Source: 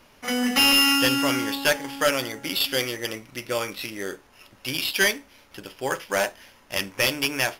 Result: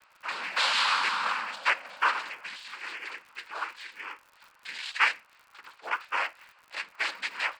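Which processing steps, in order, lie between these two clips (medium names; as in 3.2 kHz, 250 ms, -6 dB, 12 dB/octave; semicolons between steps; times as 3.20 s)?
2.21–3.55 s: compressor with a negative ratio -30 dBFS, ratio -1; ladder band-pass 1.5 kHz, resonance 50%; noise-vocoded speech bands 8; crackle 94 per s -52 dBFS; trim +7.5 dB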